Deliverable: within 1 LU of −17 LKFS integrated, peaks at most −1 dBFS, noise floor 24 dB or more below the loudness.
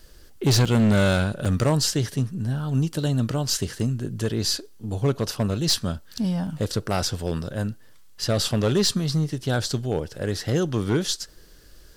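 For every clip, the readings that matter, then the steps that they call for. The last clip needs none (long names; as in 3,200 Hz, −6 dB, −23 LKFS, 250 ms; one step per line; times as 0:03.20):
share of clipped samples 1.2%; peaks flattened at −14.5 dBFS; number of dropouts 3; longest dropout 5.4 ms; integrated loudness −24.5 LKFS; sample peak −14.5 dBFS; target loudness −17.0 LKFS
→ clipped peaks rebuilt −14.5 dBFS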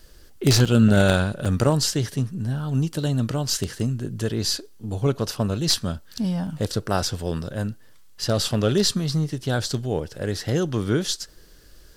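share of clipped samples 0.0%; number of dropouts 3; longest dropout 5.4 ms
→ repair the gap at 0:00.65/0:01.45/0:06.47, 5.4 ms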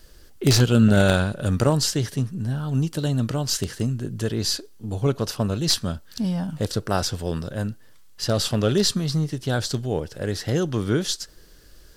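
number of dropouts 0; integrated loudness −23.5 LKFS; sample peak −5.5 dBFS; target loudness −17.0 LKFS
→ level +6.5 dB
brickwall limiter −1 dBFS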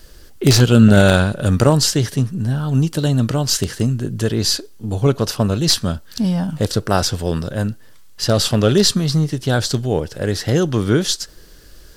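integrated loudness −17.0 LKFS; sample peak −1.0 dBFS; background noise floor −41 dBFS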